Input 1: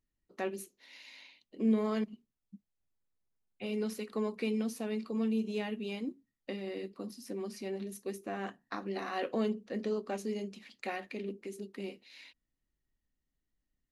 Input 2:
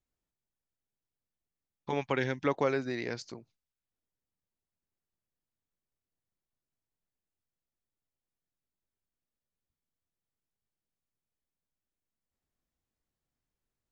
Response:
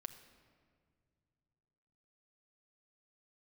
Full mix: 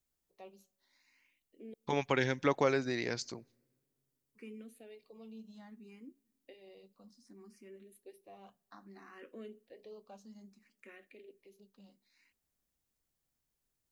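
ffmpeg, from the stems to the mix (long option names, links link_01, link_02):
-filter_complex "[0:a]asplit=2[link_01][link_02];[link_02]afreqshift=0.63[link_03];[link_01][link_03]amix=inputs=2:normalize=1,volume=-14.5dB,asplit=3[link_04][link_05][link_06];[link_04]atrim=end=1.74,asetpts=PTS-STARTPTS,afade=type=out:start_time=1.736:duration=0.004:curve=hsin[link_07];[link_05]atrim=start=1.74:end=4.35,asetpts=PTS-STARTPTS,volume=0[link_08];[link_06]atrim=start=4.35,asetpts=PTS-STARTPTS,afade=type=in:duration=0.004:curve=hsin[link_09];[link_07][link_08][link_09]concat=n=3:v=0:a=1,asplit=2[link_10][link_11];[link_11]volume=-17dB[link_12];[1:a]highshelf=frequency=5500:gain=10.5,volume=-1dB,asplit=2[link_13][link_14];[link_14]volume=-21dB[link_15];[2:a]atrim=start_sample=2205[link_16];[link_12][link_15]amix=inputs=2:normalize=0[link_17];[link_17][link_16]afir=irnorm=-1:irlink=0[link_18];[link_10][link_13][link_18]amix=inputs=3:normalize=0"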